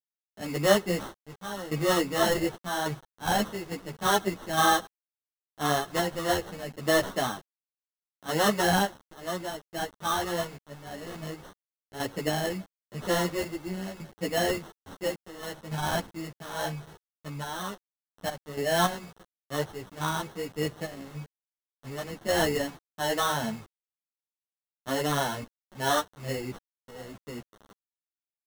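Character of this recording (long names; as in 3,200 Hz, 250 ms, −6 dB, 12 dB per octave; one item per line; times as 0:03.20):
aliases and images of a low sample rate 2,400 Hz, jitter 0%
sample-and-hold tremolo, depth 85%
a quantiser's noise floor 8 bits, dither none
a shimmering, thickened sound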